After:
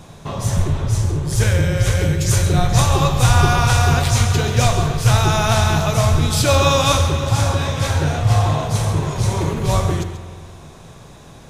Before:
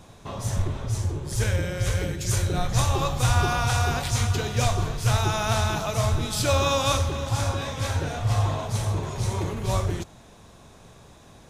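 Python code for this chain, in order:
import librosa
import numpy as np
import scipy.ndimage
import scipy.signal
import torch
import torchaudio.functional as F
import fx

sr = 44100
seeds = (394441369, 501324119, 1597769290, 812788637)

y = fx.peak_eq(x, sr, hz=150.0, db=7.0, octaves=0.3)
y = y + 10.0 ** (-11.5 / 20.0) * np.pad(y, (int(136 * sr / 1000.0), 0))[:len(y)]
y = fx.rev_spring(y, sr, rt60_s=2.2, pass_ms=(46,), chirp_ms=55, drr_db=11.0)
y = F.gain(torch.from_numpy(y), 7.0).numpy()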